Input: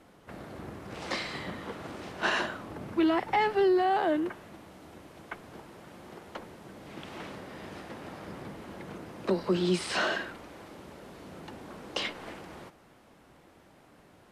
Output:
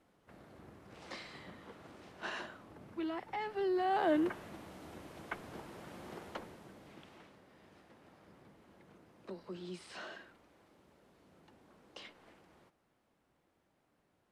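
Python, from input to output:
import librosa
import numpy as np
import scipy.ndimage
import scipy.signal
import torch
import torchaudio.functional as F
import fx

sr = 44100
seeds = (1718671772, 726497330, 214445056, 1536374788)

y = fx.gain(x, sr, db=fx.line((3.46, -13.5), (4.21, -1.0), (6.23, -1.0), (6.88, -10.0), (7.31, -18.5)))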